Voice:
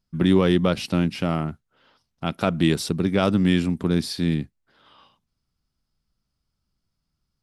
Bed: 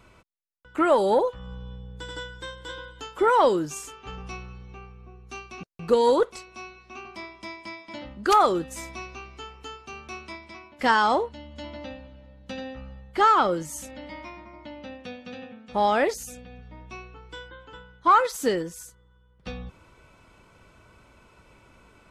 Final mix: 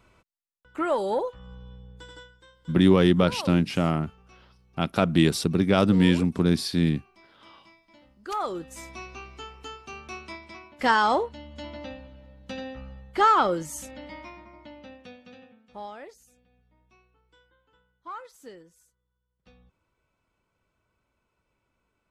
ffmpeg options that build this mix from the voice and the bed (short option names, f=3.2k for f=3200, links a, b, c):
-filter_complex "[0:a]adelay=2550,volume=0dB[a];[1:a]volume=11.5dB,afade=t=out:st=1.9:d=0.51:silence=0.251189,afade=t=in:st=8.21:d=1.03:silence=0.141254,afade=t=out:st=13.81:d=2.16:silence=0.0944061[b];[a][b]amix=inputs=2:normalize=0"